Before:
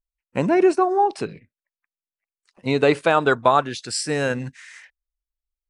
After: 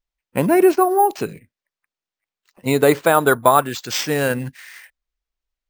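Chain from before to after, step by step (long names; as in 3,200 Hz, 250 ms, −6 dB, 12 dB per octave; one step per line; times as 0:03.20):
0:02.75–0:03.55: parametric band 2,700 Hz −9 dB 0.25 octaves
bad sample-rate conversion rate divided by 4×, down none, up hold
level +3 dB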